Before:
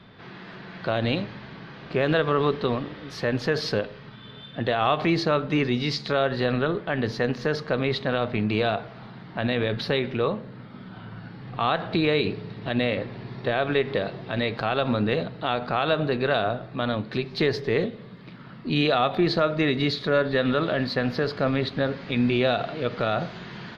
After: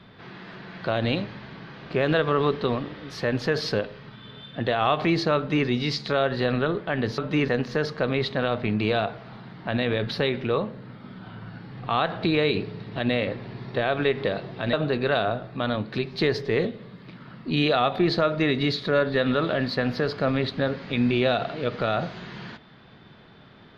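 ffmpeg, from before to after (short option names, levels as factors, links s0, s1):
-filter_complex "[0:a]asplit=4[s0][s1][s2][s3];[s0]atrim=end=7.182[s4];[s1]atrim=start=5.368:end=5.672[s5];[s2]atrim=start=7.178:end=14.432[s6];[s3]atrim=start=15.918[s7];[s4][s5]acrossfade=d=0.004:c1=hsin:c2=hsin[s8];[s8][s6]acrossfade=d=0.004:c1=hsin:c2=hsin[s9];[s9][s7]acrossfade=d=0.004:c1=hsin:c2=hsin"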